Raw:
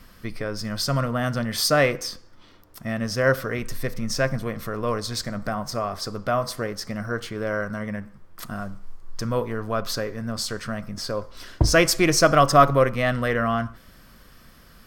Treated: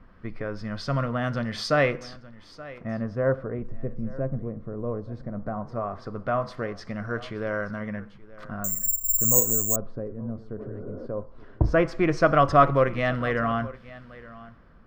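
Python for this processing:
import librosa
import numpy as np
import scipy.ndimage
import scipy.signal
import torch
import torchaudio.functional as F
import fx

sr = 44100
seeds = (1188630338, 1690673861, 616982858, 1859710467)

p1 = fx.filter_lfo_lowpass(x, sr, shape='sine', hz=0.17, low_hz=480.0, high_hz=3600.0, q=0.73)
p2 = fx.spec_repair(p1, sr, seeds[0], start_s=10.62, length_s=0.41, low_hz=200.0, high_hz=1500.0, source='both')
p3 = p2 + fx.echo_single(p2, sr, ms=876, db=-19.0, dry=0)
p4 = fx.resample_bad(p3, sr, factor=6, down='filtered', up='zero_stuff', at=(8.64, 9.76))
y = F.gain(torch.from_numpy(p4), -2.5).numpy()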